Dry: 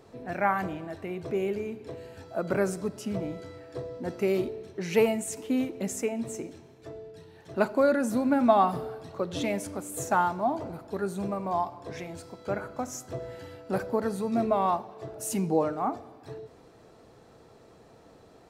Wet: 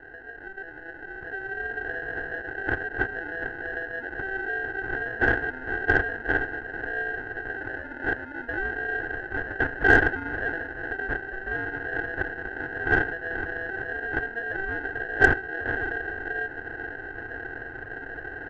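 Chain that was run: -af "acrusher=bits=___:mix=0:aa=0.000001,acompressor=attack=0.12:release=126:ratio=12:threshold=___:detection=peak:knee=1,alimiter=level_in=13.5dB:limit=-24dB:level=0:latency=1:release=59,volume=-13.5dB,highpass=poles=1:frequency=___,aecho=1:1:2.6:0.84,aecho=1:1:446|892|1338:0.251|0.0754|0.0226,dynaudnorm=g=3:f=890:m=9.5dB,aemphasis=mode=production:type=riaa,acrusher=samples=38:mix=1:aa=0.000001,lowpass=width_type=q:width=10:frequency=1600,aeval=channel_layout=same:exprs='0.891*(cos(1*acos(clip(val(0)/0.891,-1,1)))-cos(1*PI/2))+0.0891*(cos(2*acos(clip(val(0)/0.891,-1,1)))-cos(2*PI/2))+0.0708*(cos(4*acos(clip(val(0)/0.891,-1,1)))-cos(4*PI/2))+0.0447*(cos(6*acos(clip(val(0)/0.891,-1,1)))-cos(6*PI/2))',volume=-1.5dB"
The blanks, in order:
11, -28dB, 330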